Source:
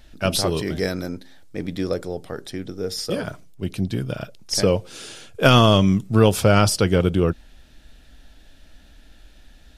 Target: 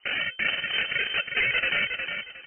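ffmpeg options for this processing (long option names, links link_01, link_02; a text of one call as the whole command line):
ffmpeg -i in.wav -filter_complex "[0:a]agate=range=-9dB:threshold=-35dB:ratio=16:detection=peak,bandreject=frequency=117.2:width_type=h:width=4,bandreject=frequency=234.4:width_type=h:width=4,bandreject=frequency=351.6:width_type=h:width=4,aresample=11025,acrusher=samples=24:mix=1:aa=0.000001,aresample=44100,dynaudnorm=framelen=160:gausssize=11:maxgain=7.5dB,asoftclip=type=tanh:threshold=-13.5dB,asetrate=50951,aresample=44100,atempo=0.865537,asoftclip=type=hard:threshold=-19dB,flanger=delay=3.8:depth=5.2:regen=-57:speed=0.27:shape=triangular,asetrate=174636,aresample=44100,equalizer=frequency=2300:width_type=o:width=2.5:gain=7.5,asplit=2[link_01][link_02];[link_02]aecho=0:1:361|722|1083:0.501|0.125|0.0313[link_03];[link_01][link_03]amix=inputs=2:normalize=0,lowpass=frequency=2600:width_type=q:width=0.5098,lowpass=frequency=2600:width_type=q:width=0.6013,lowpass=frequency=2600:width_type=q:width=0.9,lowpass=frequency=2600:width_type=q:width=2.563,afreqshift=-3100,volume=-1.5dB" out.wav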